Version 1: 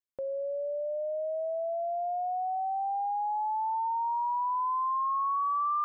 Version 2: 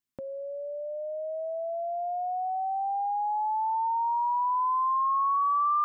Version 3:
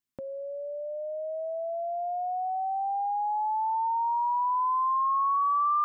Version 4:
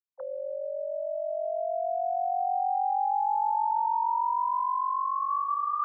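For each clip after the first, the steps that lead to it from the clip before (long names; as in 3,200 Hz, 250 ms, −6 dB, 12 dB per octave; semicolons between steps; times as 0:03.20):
octave-band graphic EQ 125/250/500 Hz +4/+10/−11 dB; level +5 dB
no processing that can be heard
three sine waves on the formant tracks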